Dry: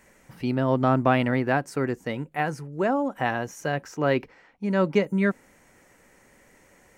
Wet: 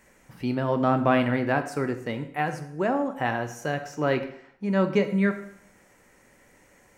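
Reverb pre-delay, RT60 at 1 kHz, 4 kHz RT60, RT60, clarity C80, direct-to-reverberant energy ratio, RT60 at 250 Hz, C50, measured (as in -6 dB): 7 ms, 0.65 s, 0.60 s, 0.70 s, 13.5 dB, 7.5 dB, 0.65 s, 11.0 dB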